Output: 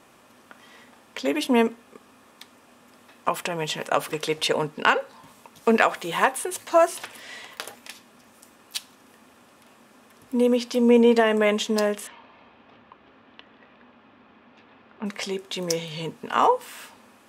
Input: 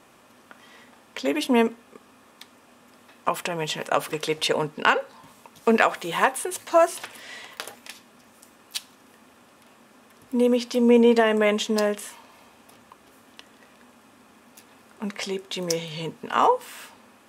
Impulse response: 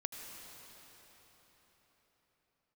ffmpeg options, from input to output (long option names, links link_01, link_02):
-filter_complex "[0:a]asettb=1/sr,asplit=3[link_01][link_02][link_03];[link_01]atrim=end=12.074[link_04];[link_02]atrim=start=12.07:end=15.06,asetpts=PTS-STARTPTS,afade=type=in:duration=0.004:curve=qsin,afade=type=out:start_time=2.986:duration=0.004:curve=qsin,lowpass=frequency=3500:width=0.5412,lowpass=frequency=3500:width=1.3066[link_05];[link_03]atrim=start=15.056[link_06];[link_04][link_05]acrossfade=duration=0.004:curve1=hsin:curve2=qsin[link_07];[link_07][link_06]acrossfade=duration=0.004:curve1=qsin:curve2=hsin"